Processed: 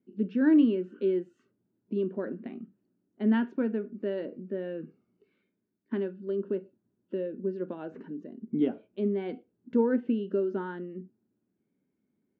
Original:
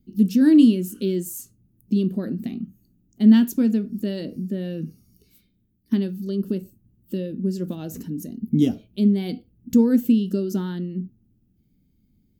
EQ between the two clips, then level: cabinet simulation 330–2400 Hz, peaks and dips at 400 Hz +6 dB, 570 Hz +5 dB, 950 Hz +7 dB, 1.5 kHz +7 dB; -4.5 dB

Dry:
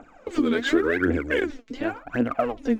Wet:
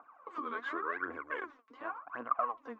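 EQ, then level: band-pass filter 1.1 kHz, Q 11; +7.5 dB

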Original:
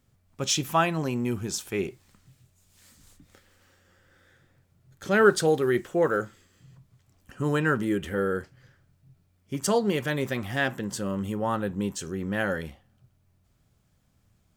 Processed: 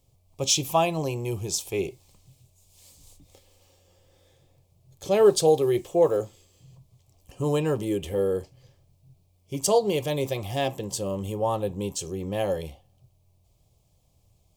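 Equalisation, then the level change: peaking EQ 270 Hz +14.5 dB 0.25 oct; static phaser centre 610 Hz, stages 4; band-stop 1.9 kHz, Q 6.5; +4.5 dB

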